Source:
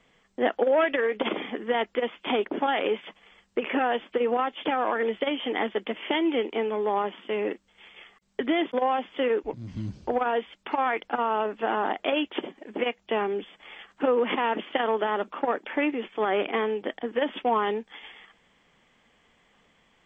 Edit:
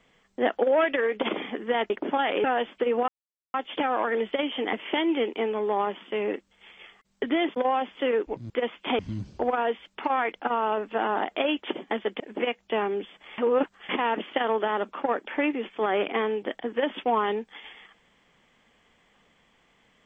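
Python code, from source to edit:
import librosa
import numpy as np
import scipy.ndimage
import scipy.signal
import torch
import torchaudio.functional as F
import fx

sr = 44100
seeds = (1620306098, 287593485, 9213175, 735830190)

y = fx.edit(x, sr, fx.move(start_s=1.9, length_s=0.49, to_s=9.67),
    fx.cut(start_s=2.93, length_s=0.85),
    fx.insert_silence(at_s=4.42, length_s=0.46),
    fx.move(start_s=5.61, length_s=0.29, to_s=12.59),
    fx.reverse_span(start_s=13.77, length_s=0.51), tone=tone)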